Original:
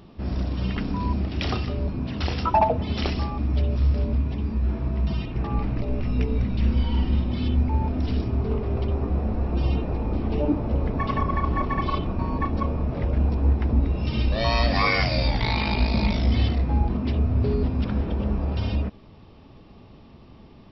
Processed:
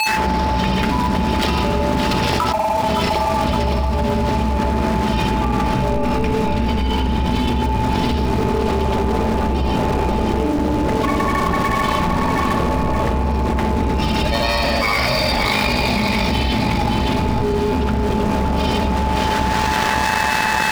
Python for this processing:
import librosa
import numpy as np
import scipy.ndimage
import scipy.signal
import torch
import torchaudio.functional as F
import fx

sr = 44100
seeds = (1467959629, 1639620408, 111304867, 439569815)

y = fx.granulator(x, sr, seeds[0], grain_ms=100.0, per_s=20.0, spray_ms=100.0, spread_st=0)
y = fx.hum_notches(y, sr, base_hz=50, count=5)
y = y + 10.0 ** (-35.0 / 20.0) * np.sin(2.0 * np.pi * 870.0 * np.arange(len(y)) / sr)
y = fx.high_shelf(y, sr, hz=2300.0, db=-8.5)
y = fx.room_shoebox(y, sr, seeds[1], volume_m3=3500.0, walls='mixed', distance_m=1.3)
y = np.sign(y) * np.maximum(np.abs(y) - 10.0 ** (-47.5 / 20.0), 0.0)
y = fx.echo_feedback(y, sr, ms=566, feedback_pct=35, wet_db=-8.0)
y = np.sign(y) * np.maximum(np.abs(y) - 10.0 ** (-41.0 / 20.0), 0.0)
y = fx.tilt_eq(y, sr, slope=2.5)
y = fx.env_flatten(y, sr, amount_pct=100)